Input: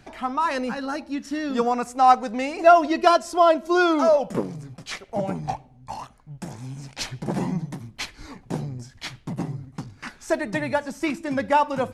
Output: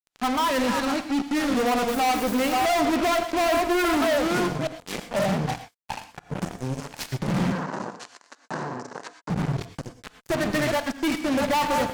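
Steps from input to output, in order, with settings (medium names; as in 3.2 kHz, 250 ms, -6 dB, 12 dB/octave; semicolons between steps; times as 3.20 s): chunks repeated in reverse 584 ms, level -8 dB; 7.80–8.05 s: spectral selection erased 670–2300 Hz; low-pass that closes with the level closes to 1.4 kHz, closed at -13 dBFS; harmonic-percussive split percussive -10 dB; 1.88–2.65 s: word length cut 8-bit, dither triangular; fuzz box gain 36 dB, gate -35 dBFS; 7.52–9.30 s: cabinet simulation 310–7400 Hz, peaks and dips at 1 kHz +7 dB, 1.6 kHz +6 dB, 2.3 kHz -6 dB, 3.3 kHz -8 dB, 5.2 kHz -3 dB; gated-style reverb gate 140 ms rising, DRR 10 dB; trim -7.5 dB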